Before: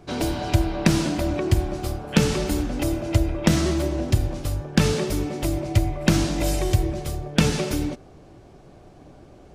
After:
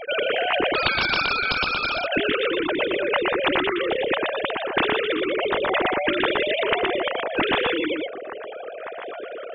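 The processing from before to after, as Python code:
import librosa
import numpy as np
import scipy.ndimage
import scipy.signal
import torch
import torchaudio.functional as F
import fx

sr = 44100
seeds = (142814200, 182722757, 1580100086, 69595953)

p1 = fx.sine_speech(x, sr)
p2 = fx.over_compress(p1, sr, threshold_db=-24.0, ratio=-0.5)
p3 = p1 + F.gain(torch.from_numpy(p2), 2.5).numpy()
p4 = fx.ring_mod(p3, sr, carrier_hz=1900.0, at=(0.74, 1.94), fade=0.02)
p5 = p4 + 10.0 ** (-5.0 / 20.0) * np.pad(p4, (int(119 * sr / 1000.0), 0))[:len(p4)]
p6 = fx.spectral_comp(p5, sr, ratio=2.0)
y = F.gain(torch.from_numpy(p6), -1.5).numpy()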